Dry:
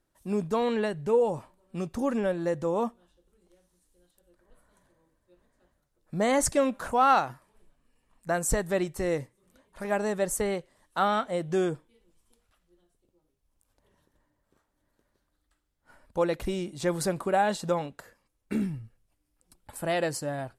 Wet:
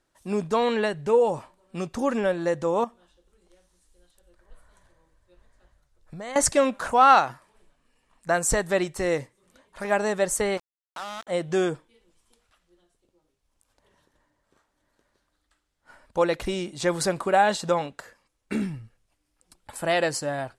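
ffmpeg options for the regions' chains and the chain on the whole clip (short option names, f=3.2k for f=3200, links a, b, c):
-filter_complex "[0:a]asettb=1/sr,asplit=3[a][b][c];[a]atrim=end=2.844[d];[b]atrim=start=2.84:end=6.36,asetpts=PTS-STARTPTS,afade=t=in:d=0.004:c=qsin,afade=t=out:st=3.516:d=0.004:c=qsin,asubboost=boost=7:cutoff=100,acompressor=threshold=-38dB:ratio=5:attack=3.2:release=140:knee=1:detection=peak[e];[c]atrim=start=6.356[f];[d][e]acrossfade=d=0.004:c1=hsin:c2=qsin[g];[g][f]acrossfade=d=0.004:c1=qsin:c2=hsin,asettb=1/sr,asplit=3[h][i][j];[h]atrim=end=10.574[k];[i]atrim=start=10.57:end=11.27,asetpts=PTS-STARTPTS,afade=t=in:d=0.004:c=qsin,afade=t=out:st=0.696:d=0.004:c=qsin,acompressor=threshold=-42dB:ratio=3:attack=3.2:release=140:knee=1:detection=peak,aeval=exprs='val(0)*gte(abs(val(0)),0.00944)':c=same[l];[j]atrim=start=11.266[m];[k][l]acrossfade=d=0.004:c1=hsin:c2=qsin[n];[n][m]acrossfade=d=0.004:c1=qsin:c2=hsin,lowpass=8.9k,lowshelf=f=450:g=-7.5,volume=7dB"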